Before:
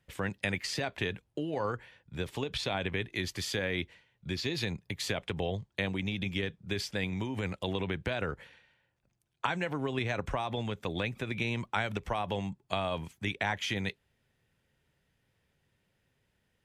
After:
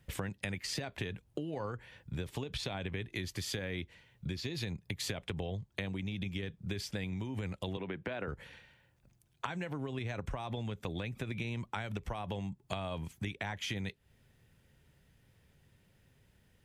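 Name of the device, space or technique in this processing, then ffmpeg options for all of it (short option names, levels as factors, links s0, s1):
ASMR close-microphone chain: -filter_complex "[0:a]asettb=1/sr,asplit=3[s0][s1][s2];[s0]atrim=end=7.774[s3];[s1]atrim=start=7.77:end=8.28,asetpts=PTS-STARTPTS,afade=t=in:d=0.004:c=qsin,afade=t=out:st=0.506:d=0.004:c=qsin,acrossover=split=180 3100:gain=0.141 1 0.178[s4][s5][s6];[s4][s5][s6]amix=inputs=3:normalize=0[s7];[s2]atrim=start=8.276[s8];[s3][s7]acrossfade=d=0.004:c1=hsin:c2=qsin[s9];[s9][s8]acrossfade=d=0.004:c1=qsin:c2=hsin,lowshelf=f=240:g=8,acompressor=threshold=0.01:ratio=6,highshelf=f=7200:g=5.5,volume=1.58"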